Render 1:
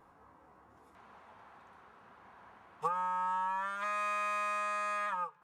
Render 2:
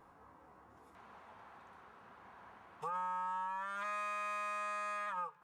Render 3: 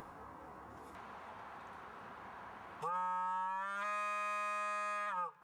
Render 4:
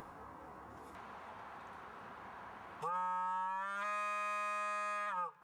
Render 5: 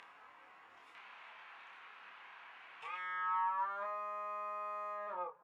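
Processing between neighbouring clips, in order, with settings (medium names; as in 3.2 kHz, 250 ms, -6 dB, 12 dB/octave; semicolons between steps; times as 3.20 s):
peak limiter -32.5 dBFS, peak gain reduction 10 dB
upward compressor, threshold -44 dBFS; trim +1 dB
no audible change
single-diode clipper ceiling -36 dBFS; band-pass sweep 2.6 kHz -> 580 Hz, 2.89–3.97 s; doubling 28 ms -3.5 dB; trim +6.5 dB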